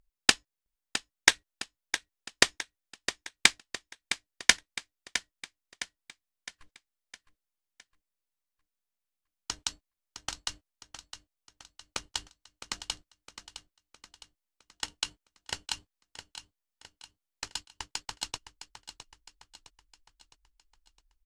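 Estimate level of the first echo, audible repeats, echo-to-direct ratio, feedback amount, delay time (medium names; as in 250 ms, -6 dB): -11.0 dB, 4, -10.0 dB, 48%, 661 ms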